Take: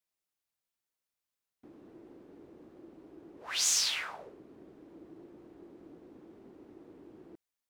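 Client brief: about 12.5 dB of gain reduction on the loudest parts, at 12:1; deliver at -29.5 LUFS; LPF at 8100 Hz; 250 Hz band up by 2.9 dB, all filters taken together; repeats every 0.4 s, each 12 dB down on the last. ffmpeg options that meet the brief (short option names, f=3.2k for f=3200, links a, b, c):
-af "lowpass=8.1k,equalizer=f=250:t=o:g=4,acompressor=threshold=-38dB:ratio=12,aecho=1:1:400|800|1200:0.251|0.0628|0.0157,volume=17dB"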